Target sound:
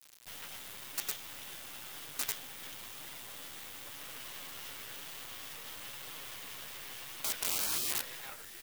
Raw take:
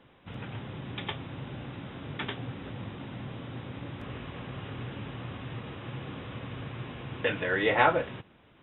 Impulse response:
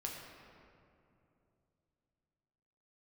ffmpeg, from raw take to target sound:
-filter_complex "[0:a]asplit=2[link_01][link_02];[link_02]acompressor=threshold=-37dB:ratio=6,volume=2dB[link_03];[link_01][link_03]amix=inputs=2:normalize=0,bandreject=frequency=121.6:width_type=h:width=4,bandreject=frequency=243.2:width_type=h:width=4,bandreject=frequency=364.8:width_type=h:width=4,bandreject=frequency=486.4:width_type=h:width=4,bandreject=frequency=608:width_type=h:width=4,bandreject=frequency=729.6:width_type=h:width=4,bandreject=frequency=851.2:width_type=h:width=4,bandreject=frequency=972.8:width_type=h:width=4,bandreject=frequency=1094.4:width_type=h:width=4,bandreject=frequency=1216:width_type=h:width=4,bandreject=frequency=1337.6:width_type=h:width=4,bandreject=frequency=1459.2:width_type=h:width=4,bandreject=frequency=1580.8:width_type=h:width=4,bandreject=frequency=1702.4:width_type=h:width=4,bandreject=frequency=1824:width_type=h:width=4,bandreject=frequency=1945.6:width_type=h:width=4,bandreject=frequency=2067.2:width_type=h:width=4,bandreject=frequency=2188.8:width_type=h:width=4,bandreject=frequency=2310.4:width_type=h:width=4,bandreject=frequency=2432:width_type=h:width=4,bandreject=frequency=2553.6:width_type=h:width=4,bandreject=frequency=2675.2:width_type=h:width=4,bandreject=frequency=2796.8:width_type=h:width=4,bandreject=frequency=2918.4:width_type=h:width=4,bandreject=frequency=3040:width_type=h:width=4,bandreject=frequency=3161.6:width_type=h:width=4,bandreject=frequency=3283.2:width_type=h:width=4,bandreject=frequency=3404.8:width_type=h:width=4,bandreject=frequency=3526.4:width_type=h:width=4,bandreject=frequency=3648:width_type=h:width=4,bandreject=frequency=3769.6:width_type=h:width=4,bandreject=frequency=3891.2:width_type=h:width=4,bandreject=frequency=4012.8:width_type=h:width=4,asplit=2[link_04][link_05];[link_05]asplit=6[link_06][link_07][link_08][link_09][link_10][link_11];[link_06]adelay=438,afreqshift=-52,volume=-16.5dB[link_12];[link_07]adelay=876,afreqshift=-104,volume=-20.8dB[link_13];[link_08]adelay=1314,afreqshift=-156,volume=-25.1dB[link_14];[link_09]adelay=1752,afreqshift=-208,volume=-29.4dB[link_15];[link_10]adelay=2190,afreqshift=-260,volume=-33.7dB[link_16];[link_11]adelay=2628,afreqshift=-312,volume=-38dB[link_17];[link_12][link_13][link_14][link_15][link_16][link_17]amix=inputs=6:normalize=0[link_18];[link_04][link_18]amix=inputs=2:normalize=0,flanger=delay=5.8:depth=7.2:regen=32:speed=0.98:shape=triangular,acrossover=split=340[link_19][link_20];[link_19]acompressor=threshold=-44dB:ratio=4[link_21];[link_21][link_20]amix=inputs=2:normalize=0,lowshelf=frequency=450:gain=-11.5,bandreject=frequency=2500:width=22,acrusher=bits=6:dc=4:mix=0:aa=0.000001,crystalizer=i=4.5:c=0,afftfilt=real='re*lt(hypot(re,im),0.0562)':imag='im*lt(hypot(re,im),0.0562)':win_size=1024:overlap=0.75,volume=-4dB"

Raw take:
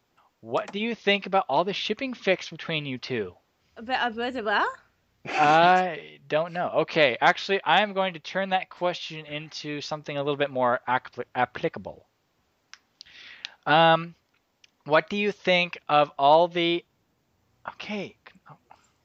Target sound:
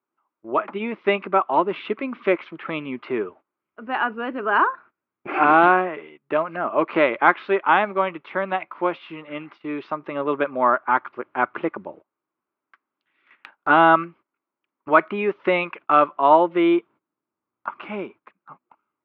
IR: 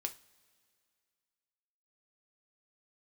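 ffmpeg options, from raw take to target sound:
-af "highpass=320,equalizer=frequency=330:width_type=q:width=4:gain=5,equalizer=frequency=490:width_type=q:width=4:gain=-8,equalizer=frequency=730:width_type=q:width=4:gain=-9,equalizer=frequency=1200:width_type=q:width=4:gain=4,equalizer=frequency=1800:width_type=q:width=4:gain=-8,lowpass=frequency=2000:width=0.5412,lowpass=frequency=2000:width=1.3066,agate=range=-18dB:threshold=-52dB:ratio=16:detection=peak,volume=8dB"

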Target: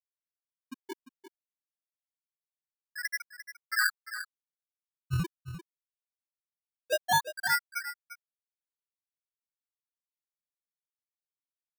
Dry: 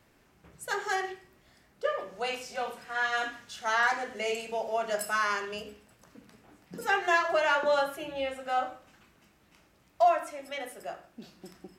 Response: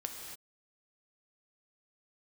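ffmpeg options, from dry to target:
-filter_complex "[0:a]afftfilt=real='re':imag='-im':win_size=2048:overlap=0.75,highpass=frequency=1400:width=0.5412,highpass=frequency=1400:width=1.3066,afftfilt=real='re*gte(hypot(re,im),0.141)':imag='im*gte(hypot(re,im),0.141)':win_size=1024:overlap=0.75,adynamicequalizer=threshold=0.00398:dfrequency=2300:dqfactor=0.72:tfrequency=2300:tqfactor=0.72:attack=5:release=100:ratio=0.375:range=2.5:mode=boostabove:tftype=bell,acrusher=samples=23:mix=1:aa=0.000001:lfo=1:lforange=23:lforate=0.22,asoftclip=type=tanh:threshold=-28dB,asplit=2[link_01][link_02];[link_02]aecho=0:1:348:0.251[link_03];[link_01][link_03]amix=inputs=2:normalize=0,volume=8dB"

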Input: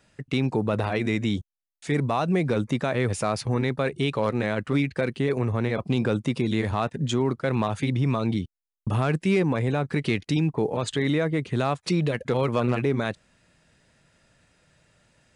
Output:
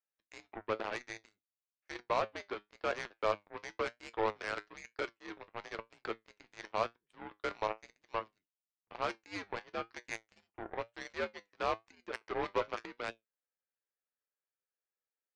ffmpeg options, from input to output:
ffmpeg -i in.wav -af "highpass=frequency=510:width_type=q:width=0.5412,highpass=frequency=510:width_type=q:width=1.307,lowpass=frequency=2500:width_type=q:width=0.5176,lowpass=frequency=2500:width_type=q:width=0.7071,lowpass=frequency=2500:width_type=q:width=1.932,afreqshift=-94,aeval=exprs='0.188*(cos(1*acos(clip(val(0)/0.188,-1,1)))-cos(1*PI/2))+0.015*(cos(3*acos(clip(val(0)/0.188,-1,1)))-cos(3*PI/2))+0.0211*(cos(7*acos(clip(val(0)/0.188,-1,1)))-cos(7*PI/2))':channel_layout=same,flanger=delay=8.2:depth=1.9:regen=68:speed=1:shape=triangular" out.wav

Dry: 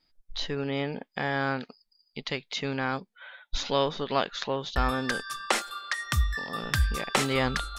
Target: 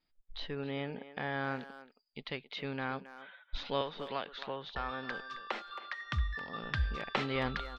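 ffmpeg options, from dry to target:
ffmpeg -i in.wav -filter_complex "[0:a]lowpass=frequency=4000:width=0.5412,lowpass=frequency=4000:width=1.3066,asettb=1/sr,asplit=3[link_01][link_02][link_03];[link_01]atrim=end=3.814[link_04];[link_02]atrim=start=3.81:end=6.01,asetpts=PTS-STARTPTS,afade=type=in:duration=0.004:curve=qsin,afade=type=out:start_time=2.196:duration=0.004:curve=qsin,acrossover=split=500|1300[link_05][link_06][link_07];[link_05]acompressor=threshold=-37dB:ratio=4[link_08];[link_06]acompressor=threshold=-29dB:ratio=4[link_09];[link_07]acompressor=threshold=-33dB:ratio=4[link_10];[link_08][link_09][link_10]amix=inputs=3:normalize=0[link_11];[link_03]atrim=start=6.006[link_12];[link_04][link_11]acrossfade=duration=0.004:curve1=hsin:curve2=qsin[link_13];[link_13][link_12]acrossfade=duration=0.004:curve1=qsin:curve2=hsin,asplit=2[link_14][link_15];[link_15]adelay=270,highpass=300,lowpass=3400,asoftclip=type=hard:threshold=-18.5dB,volume=-13dB[link_16];[link_14][link_16]amix=inputs=2:normalize=0,volume=-7.5dB" out.wav

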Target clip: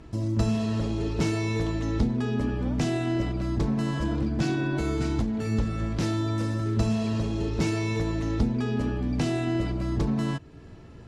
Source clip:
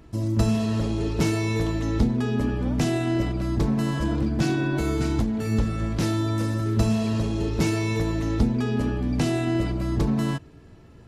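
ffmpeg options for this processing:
ffmpeg -i in.wav -filter_complex "[0:a]lowpass=8300,asplit=2[link_01][link_02];[link_02]acompressor=threshold=-37dB:ratio=6,volume=2dB[link_03];[link_01][link_03]amix=inputs=2:normalize=0,volume=-4.5dB" out.wav

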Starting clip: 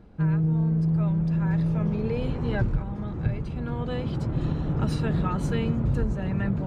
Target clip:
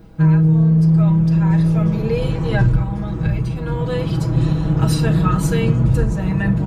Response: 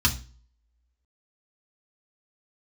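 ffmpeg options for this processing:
-filter_complex "[0:a]aemphasis=mode=production:type=50fm,aecho=1:1:6.2:0.79,asplit=2[link_01][link_02];[1:a]atrim=start_sample=2205,adelay=33[link_03];[link_02][link_03]afir=irnorm=-1:irlink=0,volume=-24dB[link_04];[link_01][link_04]amix=inputs=2:normalize=0,volume=5.5dB"

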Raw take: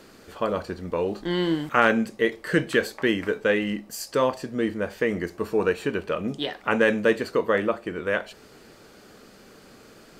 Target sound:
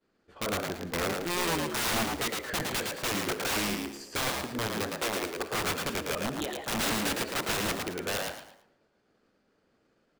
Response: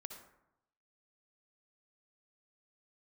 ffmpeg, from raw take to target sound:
-filter_complex "[0:a]agate=range=-33dB:threshold=-38dB:ratio=3:detection=peak,aemphasis=mode=reproduction:type=50fm,aeval=exprs='(mod(9.44*val(0)+1,2)-1)/9.44':channel_layout=same,asettb=1/sr,asplit=3[link_01][link_02][link_03];[link_01]atrim=end=4.984[link_04];[link_02]atrim=start=4.98:end=5.53,asetpts=PTS-STARTPTS,afade=type=in:duration=0.004:curve=qsin,afade=type=out:start_time=0.546:duration=0.004:curve=qsin,lowshelf=frequency=220:width_type=q:width=1.5:gain=-8[link_05];[link_03]atrim=start=5.526[link_06];[link_04][link_05]acrossfade=duration=0.004:curve1=hsin:curve2=qsin[link_07];[link_07][link_06]acrossfade=duration=0.004:curve1=qsin:curve2=hsin,asplit=5[link_08][link_09][link_10][link_11][link_12];[link_09]adelay=111,afreqshift=69,volume=-3.5dB[link_13];[link_10]adelay=222,afreqshift=138,volume=-14dB[link_14];[link_11]adelay=333,afreqshift=207,volume=-24.4dB[link_15];[link_12]adelay=444,afreqshift=276,volume=-34.9dB[link_16];[link_08][link_13][link_14][link_15][link_16]amix=inputs=5:normalize=0,asplit=2[link_17][link_18];[1:a]atrim=start_sample=2205[link_19];[link_18][link_19]afir=irnorm=-1:irlink=0,volume=-2.5dB[link_20];[link_17][link_20]amix=inputs=2:normalize=0,volume=-8.5dB"

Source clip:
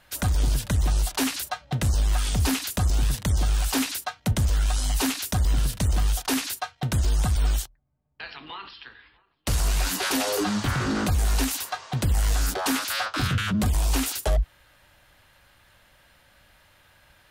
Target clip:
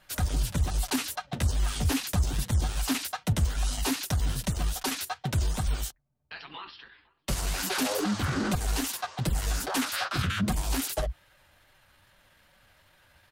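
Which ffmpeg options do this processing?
ffmpeg -i in.wav -af "flanger=delay=5.1:depth=8.4:regen=-1:speed=1.9:shape=sinusoidal,atempo=1.3" out.wav

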